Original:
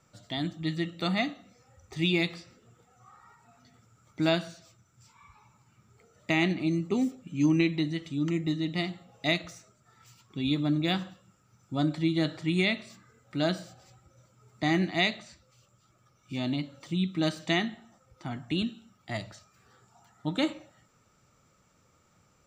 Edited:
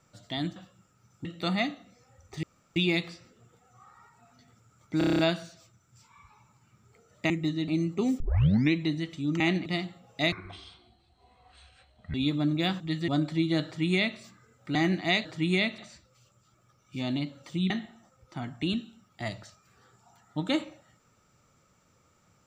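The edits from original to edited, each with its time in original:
0.56–0.84 swap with 11.05–11.74
2.02 insert room tone 0.33 s
4.24 stutter 0.03 s, 8 plays
6.35–6.61 swap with 8.33–8.71
7.13 tape start 0.52 s
9.37–10.39 speed 56%
12.31–12.84 copy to 15.15
13.41–14.65 cut
17.07–17.59 cut

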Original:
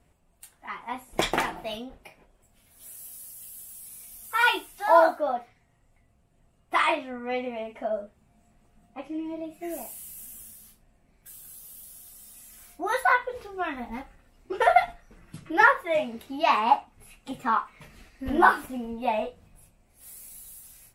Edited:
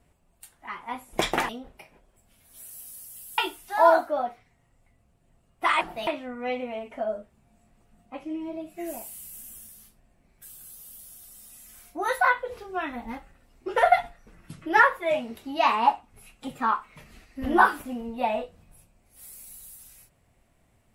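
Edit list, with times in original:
1.49–1.75 move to 6.91
3.64–4.48 cut

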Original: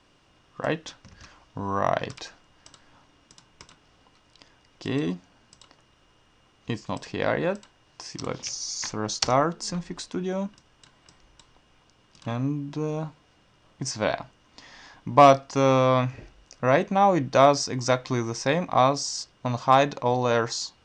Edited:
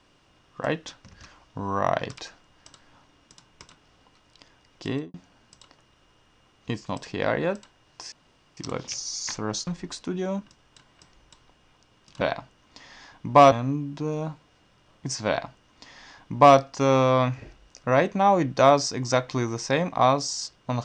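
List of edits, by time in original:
4.88–5.14 studio fade out
8.12 insert room tone 0.45 s
9.22–9.74 cut
14.03–15.34 copy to 12.28

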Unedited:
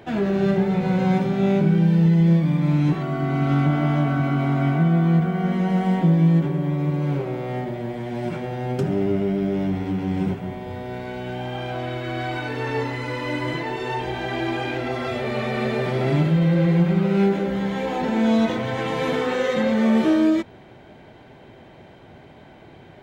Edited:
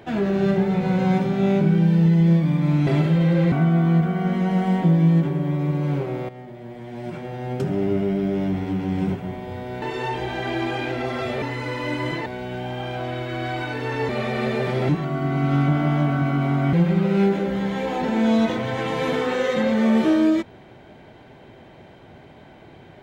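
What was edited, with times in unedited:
2.87–4.71 swap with 16.08–16.73
7.48–9.15 fade in, from -14 dB
11.01–12.84 swap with 13.68–15.28

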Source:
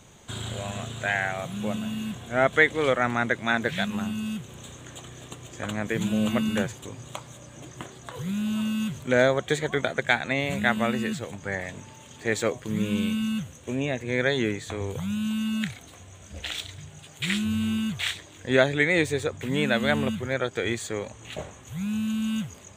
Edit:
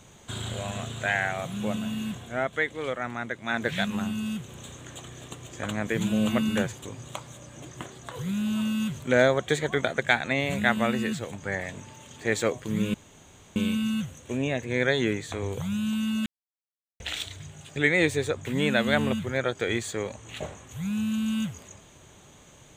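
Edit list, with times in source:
2.14–3.73 dip -8 dB, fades 0.32 s
12.94 insert room tone 0.62 s
15.64–16.38 mute
17.14–18.72 cut

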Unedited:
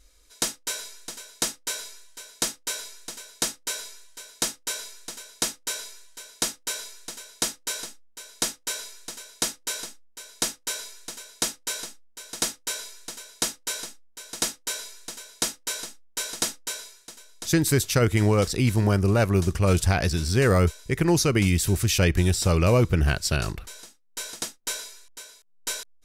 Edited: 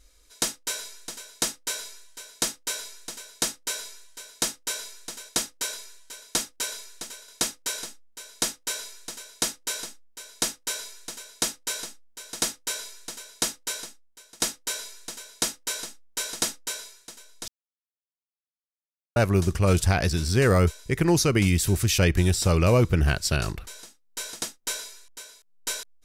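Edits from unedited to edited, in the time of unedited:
5.29–5.83 swap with 7.35–7.82
13.6–14.4 fade out, to -15.5 dB
17.48–19.16 mute

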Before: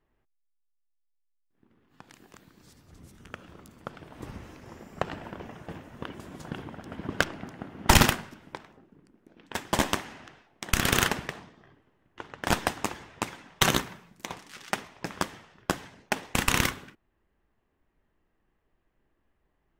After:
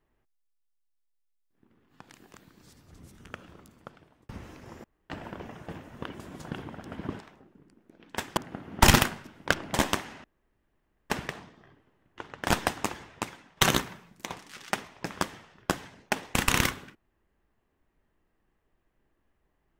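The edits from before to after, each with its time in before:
3.37–4.29 fade out
4.84–5.1 room tone
7.19–7.44 swap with 8.56–9.74
10.24–11.1 room tone
13.01–13.57 fade out linear, to -7.5 dB

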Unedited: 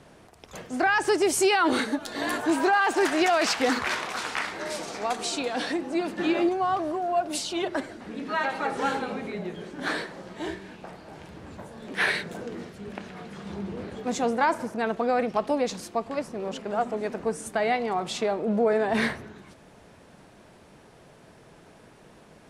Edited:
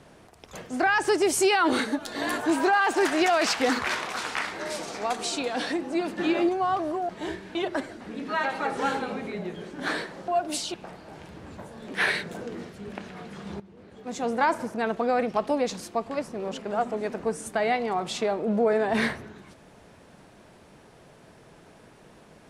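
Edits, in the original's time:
7.09–7.55 swap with 10.28–10.74
13.6–14.4 fade in quadratic, from -17 dB

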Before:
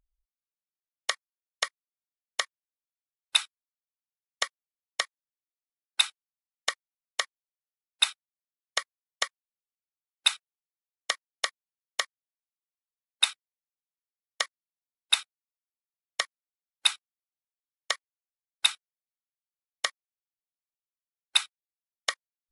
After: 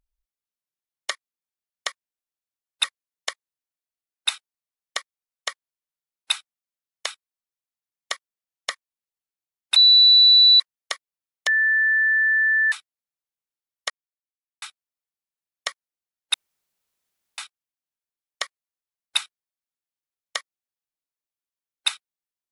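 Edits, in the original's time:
1.1–1.63 cut
3.37–5.01 swap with 8.78–9.23
10.29–11.13 bleep 3960 Hz -9.5 dBFS
12–13.25 bleep 1760 Hz -16 dBFS
14.43–15.15 mute
16.87 insert room tone 1.04 s

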